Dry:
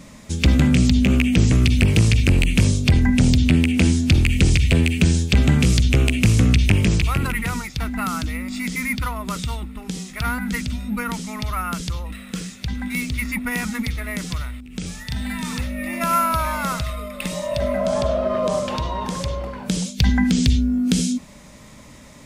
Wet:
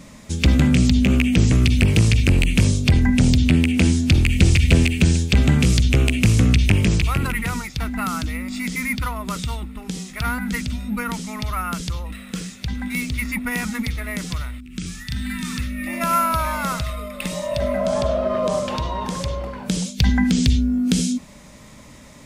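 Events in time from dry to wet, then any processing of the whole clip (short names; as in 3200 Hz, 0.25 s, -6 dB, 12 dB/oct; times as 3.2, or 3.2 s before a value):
4.1–4.56 echo throw 0.3 s, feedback 30%, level -4.5 dB
14.58–15.87 band shelf 660 Hz -13 dB 1.3 oct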